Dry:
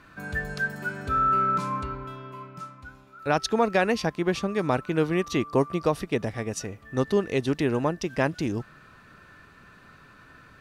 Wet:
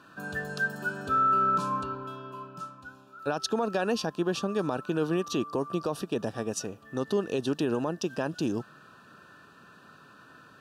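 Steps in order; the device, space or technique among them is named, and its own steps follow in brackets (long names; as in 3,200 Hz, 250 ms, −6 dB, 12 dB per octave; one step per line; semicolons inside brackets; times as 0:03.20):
PA system with an anti-feedback notch (high-pass filter 160 Hz 12 dB per octave; Butterworth band-reject 2,100 Hz, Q 2.5; brickwall limiter −18 dBFS, peak gain reduction 9 dB)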